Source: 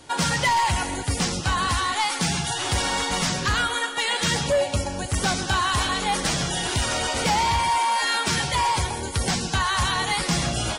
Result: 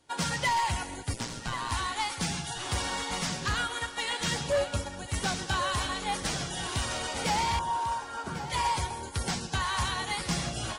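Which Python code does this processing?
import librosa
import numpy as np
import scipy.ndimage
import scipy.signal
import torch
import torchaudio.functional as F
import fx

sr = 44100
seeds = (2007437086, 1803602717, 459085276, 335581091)

p1 = fx.ring_mod(x, sr, carrier_hz=60.0, at=(1.13, 1.72))
p2 = fx.cheby1_lowpass(p1, sr, hz=1600.0, order=6, at=(7.59, 8.5))
p3 = p2 + fx.echo_single(p2, sr, ms=1096, db=-10.5, dry=0)
p4 = fx.upward_expand(p3, sr, threshold_db=-44.0, expansion=1.5)
y = F.gain(torch.from_numpy(p4), -5.5).numpy()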